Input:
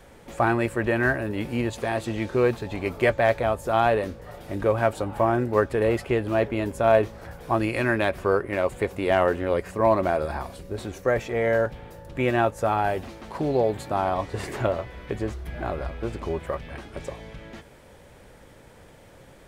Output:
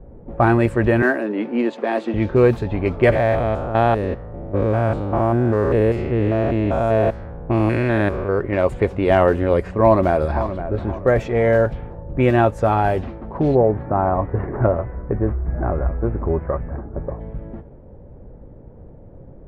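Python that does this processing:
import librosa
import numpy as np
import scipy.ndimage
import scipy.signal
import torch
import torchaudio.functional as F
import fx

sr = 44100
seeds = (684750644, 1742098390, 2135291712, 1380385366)

y = fx.steep_highpass(x, sr, hz=220.0, slope=36, at=(1.02, 2.14))
y = fx.spec_steps(y, sr, hold_ms=200, at=(3.11, 8.38), fade=0.02)
y = fx.echo_throw(y, sr, start_s=9.84, length_s=0.75, ms=520, feedback_pct=35, wet_db=-11.0)
y = fx.lowpass(y, sr, hz=1700.0, slope=24, at=(13.54, 17.19), fade=0.02)
y = fx.env_lowpass(y, sr, base_hz=510.0, full_db=-20.0)
y = fx.tilt_eq(y, sr, slope=-2.0)
y = y * librosa.db_to_amplitude(4.5)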